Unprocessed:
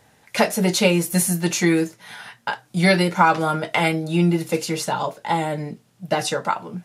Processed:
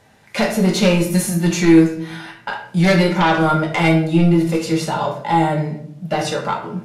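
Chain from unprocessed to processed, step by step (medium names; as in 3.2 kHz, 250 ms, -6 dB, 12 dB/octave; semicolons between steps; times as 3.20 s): treble shelf 7.7 kHz -8 dB; sine folder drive 8 dB, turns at -2.5 dBFS; harmonic-percussive split harmonic +5 dB; on a send: reverberation RT60 0.65 s, pre-delay 5 ms, DRR 2 dB; on the sum: trim -12.5 dB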